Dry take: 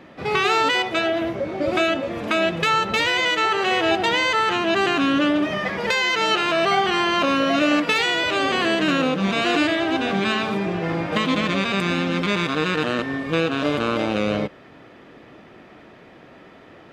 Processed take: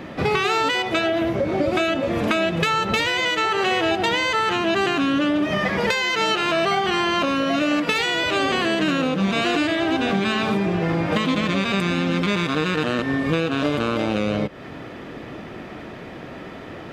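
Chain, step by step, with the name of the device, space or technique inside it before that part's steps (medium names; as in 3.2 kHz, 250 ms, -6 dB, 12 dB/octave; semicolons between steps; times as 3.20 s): ASMR close-microphone chain (bass shelf 220 Hz +5.5 dB; compression, threshold -27 dBFS, peak gain reduction 12.5 dB; treble shelf 8 kHz +4.5 dB); trim +8.5 dB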